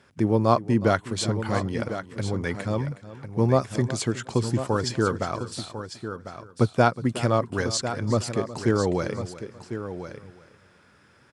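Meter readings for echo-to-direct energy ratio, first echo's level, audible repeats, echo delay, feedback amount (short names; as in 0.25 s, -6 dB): -9.5 dB, -16.0 dB, 4, 0.366 s, no steady repeat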